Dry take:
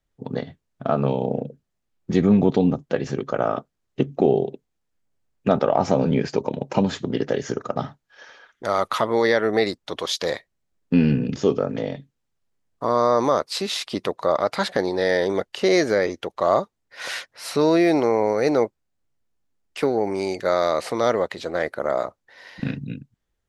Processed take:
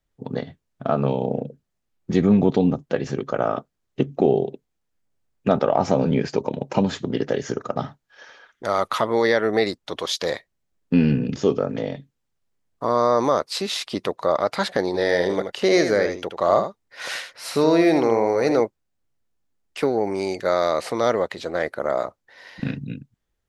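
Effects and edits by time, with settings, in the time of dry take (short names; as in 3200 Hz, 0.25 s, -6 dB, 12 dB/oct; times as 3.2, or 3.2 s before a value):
14.86–18.61 echo 78 ms -8 dB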